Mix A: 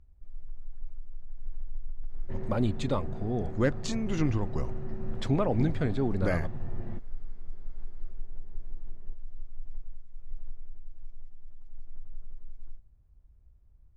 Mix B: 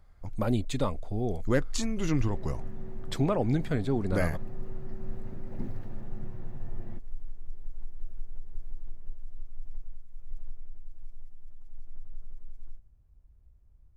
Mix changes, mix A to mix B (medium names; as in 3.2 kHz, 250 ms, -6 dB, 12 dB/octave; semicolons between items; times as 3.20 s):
speech: entry -2.10 s; second sound -5.0 dB; master: remove distance through air 64 m